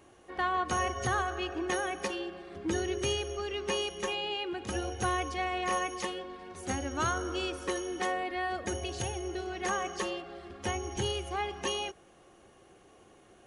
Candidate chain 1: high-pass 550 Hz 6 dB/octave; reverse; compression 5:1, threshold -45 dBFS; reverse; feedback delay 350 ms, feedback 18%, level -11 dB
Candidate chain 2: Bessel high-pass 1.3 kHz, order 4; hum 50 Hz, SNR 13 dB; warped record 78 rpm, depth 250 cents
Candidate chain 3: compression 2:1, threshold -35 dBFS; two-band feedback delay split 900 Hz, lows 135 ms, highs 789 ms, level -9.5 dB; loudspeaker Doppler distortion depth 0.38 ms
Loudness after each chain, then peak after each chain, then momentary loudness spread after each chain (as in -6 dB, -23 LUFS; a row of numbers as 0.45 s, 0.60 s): -46.5 LUFS, -38.0 LUFS, -36.5 LUFS; -32.5 dBFS, -21.0 dBFS, -22.0 dBFS; 5 LU, 15 LU, 9 LU